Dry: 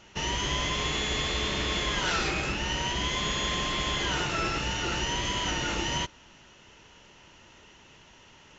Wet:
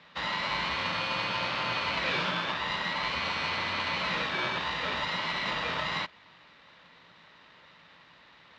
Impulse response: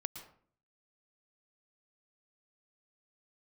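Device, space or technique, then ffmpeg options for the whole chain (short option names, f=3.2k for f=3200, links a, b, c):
ring modulator pedal into a guitar cabinet: -af "aeval=exprs='val(0)*sgn(sin(2*PI*960*n/s))':c=same,highpass=86,equalizer=f=89:t=q:w=4:g=-6,equalizer=f=170:t=q:w=4:g=7,equalizer=f=380:t=q:w=4:g=-7,equalizer=f=770:t=q:w=4:g=-6,lowpass=f=3.9k:w=0.5412,lowpass=f=3.9k:w=1.3066"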